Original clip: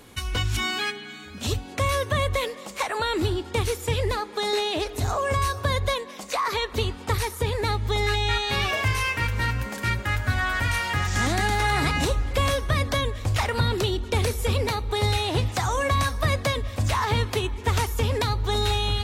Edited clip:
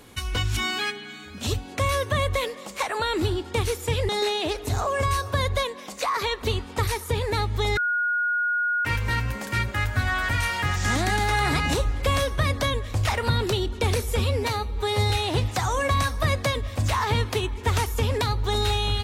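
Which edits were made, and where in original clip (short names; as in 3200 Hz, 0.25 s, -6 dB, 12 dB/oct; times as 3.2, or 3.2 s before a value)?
4.09–4.4 cut
8.08–9.16 bleep 1440 Hz -21 dBFS
14.5–15.11 stretch 1.5×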